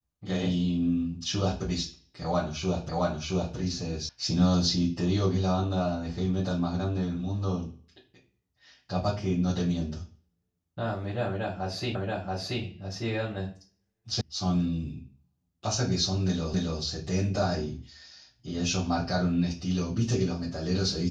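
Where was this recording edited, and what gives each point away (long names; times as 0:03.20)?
0:02.89: the same again, the last 0.67 s
0:04.09: cut off before it has died away
0:11.95: the same again, the last 0.68 s
0:14.21: cut off before it has died away
0:16.54: the same again, the last 0.27 s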